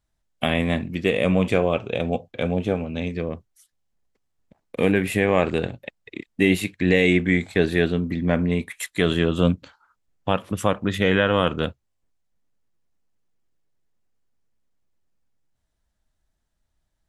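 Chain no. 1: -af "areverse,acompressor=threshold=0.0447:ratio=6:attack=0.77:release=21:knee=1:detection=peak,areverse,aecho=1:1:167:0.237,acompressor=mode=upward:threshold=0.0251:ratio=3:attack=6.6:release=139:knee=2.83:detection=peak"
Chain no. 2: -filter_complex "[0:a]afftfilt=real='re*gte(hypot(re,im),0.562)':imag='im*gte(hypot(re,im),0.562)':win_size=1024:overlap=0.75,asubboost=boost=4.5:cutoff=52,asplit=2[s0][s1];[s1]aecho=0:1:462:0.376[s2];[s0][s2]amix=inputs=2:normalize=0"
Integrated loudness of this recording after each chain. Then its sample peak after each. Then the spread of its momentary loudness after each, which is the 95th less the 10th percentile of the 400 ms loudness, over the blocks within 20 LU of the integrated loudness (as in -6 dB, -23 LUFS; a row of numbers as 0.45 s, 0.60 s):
-32.0 LUFS, -27.0 LUFS; -18.0 dBFS, -9.0 dBFS; 12 LU, 15 LU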